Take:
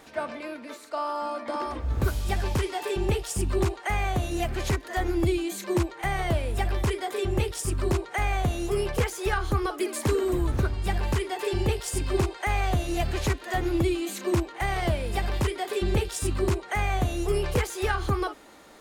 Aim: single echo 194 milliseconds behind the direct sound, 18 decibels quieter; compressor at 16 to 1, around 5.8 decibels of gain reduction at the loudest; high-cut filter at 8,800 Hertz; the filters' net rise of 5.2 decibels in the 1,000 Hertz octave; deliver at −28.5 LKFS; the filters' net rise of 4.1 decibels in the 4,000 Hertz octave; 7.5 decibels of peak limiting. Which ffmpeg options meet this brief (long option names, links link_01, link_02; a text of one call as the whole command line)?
ffmpeg -i in.wav -af "lowpass=8800,equalizer=frequency=1000:width_type=o:gain=7,equalizer=frequency=4000:width_type=o:gain=5,acompressor=threshold=-24dB:ratio=16,alimiter=limit=-21dB:level=0:latency=1,aecho=1:1:194:0.126,volume=2.5dB" out.wav